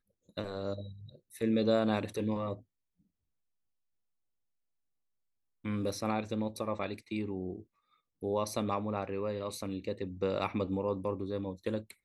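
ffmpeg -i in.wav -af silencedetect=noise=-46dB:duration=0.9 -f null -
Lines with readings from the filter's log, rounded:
silence_start: 2.59
silence_end: 5.64 | silence_duration: 3.05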